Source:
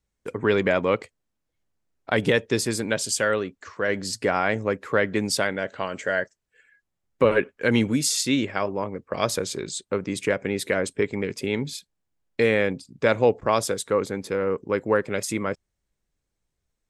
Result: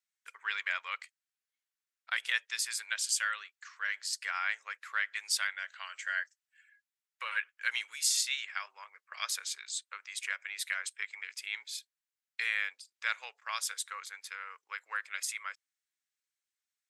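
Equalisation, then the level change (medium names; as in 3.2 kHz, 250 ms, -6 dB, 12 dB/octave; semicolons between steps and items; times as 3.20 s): high-pass 1.4 kHz 24 dB/octave; -4.5 dB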